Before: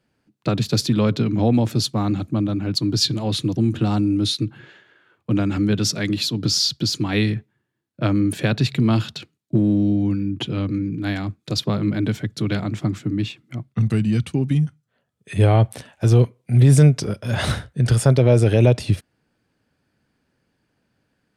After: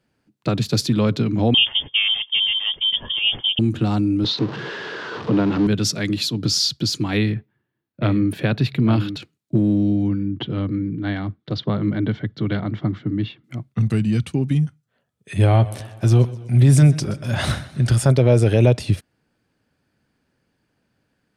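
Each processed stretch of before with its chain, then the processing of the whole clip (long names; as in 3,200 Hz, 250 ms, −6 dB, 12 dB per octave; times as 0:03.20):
0:01.54–0:03.59: high-pass filter 150 Hz + parametric band 590 Hz +10.5 dB 1 octave + voice inversion scrambler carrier 3,400 Hz
0:04.24–0:05.67: converter with a step at zero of −26 dBFS + loudspeaker in its box 130–4,500 Hz, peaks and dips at 170 Hz +5 dB, 440 Hz +10 dB, 1,000 Hz +5 dB, 2,300 Hz −5 dB
0:07.17–0:09.17: parametric band 7,400 Hz −13.5 dB 1 octave + single-tap delay 850 ms −9.5 dB
0:10.08–0:13.44: low-pass filter 3,600 Hz 24 dB per octave + notch filter 2,500 Hz, Q 5.4
0:15.35–0:18.12: notch filter 460 Hz, Q 5.5 + feedback echo with a swinging delay time 126 ms, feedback 56%, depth 72 cents, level −18 dB
whole clip: no processing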